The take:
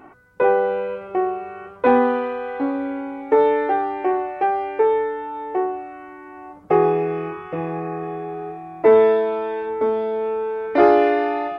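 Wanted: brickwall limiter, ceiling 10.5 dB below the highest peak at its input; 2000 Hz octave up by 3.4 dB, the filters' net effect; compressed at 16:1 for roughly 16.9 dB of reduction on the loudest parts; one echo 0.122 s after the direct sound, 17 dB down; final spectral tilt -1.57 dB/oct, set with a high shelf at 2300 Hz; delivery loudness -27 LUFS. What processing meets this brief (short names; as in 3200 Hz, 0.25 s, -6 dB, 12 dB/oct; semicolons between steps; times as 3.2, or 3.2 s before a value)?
bell 2000 Hz +8.5 dB; high shelf 2300 Hz -8.5 dB; compressor 16:1, threshold -26 dBFS; limiter -25 dBFS; echo 0.122 s -17 dB; gain +6 dB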